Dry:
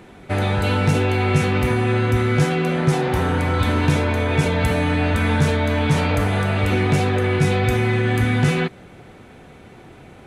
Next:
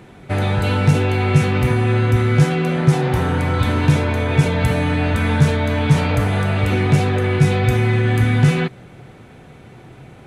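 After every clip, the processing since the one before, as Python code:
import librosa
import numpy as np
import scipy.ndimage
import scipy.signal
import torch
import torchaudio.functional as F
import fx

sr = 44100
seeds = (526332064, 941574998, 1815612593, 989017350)

y = fx.peak_eq(x, sr, hz=130.0, db=8.5, octaves=0.48)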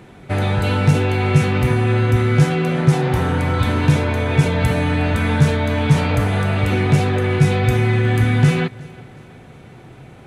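y = fx.echo_feedback(x, sr, ms=362, feedback_pct=45, wet_db=-23)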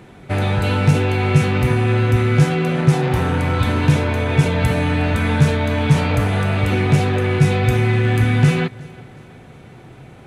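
y = fx.rattle_buzz(x, sr, strikes_db=-18.0, level_db=-25.0)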